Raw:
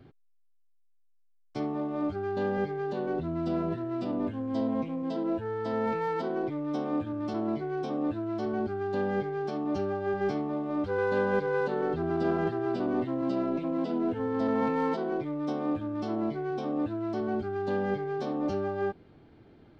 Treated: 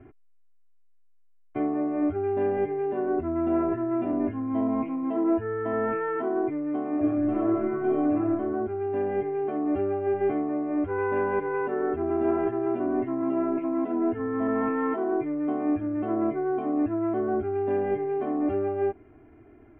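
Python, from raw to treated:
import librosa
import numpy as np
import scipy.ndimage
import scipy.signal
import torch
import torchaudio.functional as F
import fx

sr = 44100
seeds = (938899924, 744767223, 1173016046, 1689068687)

y = fx.reverb_throw(x, sr, start_s=6.94, length_s=1.31, rt60_s=1.1, drr_db=-4.5)
y = scipy.signal.sosfilt(scipy.signal.butter(8, 2500.0, 'lowpass', fs=sr, output='sos'), y)
y = y + 0.79 * np.pad(y, (int(2.9 * sr / 1000.0), 0))[:len(y)]
y = fx.rider(y, sr, range_db=10, speed_s=2.0)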